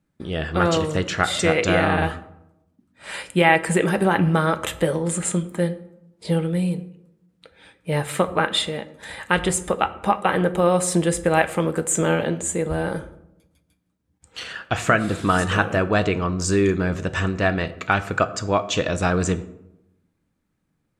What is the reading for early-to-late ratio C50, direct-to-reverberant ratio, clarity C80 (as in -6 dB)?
15.5 dB, 10.0 dB, 18.0 dB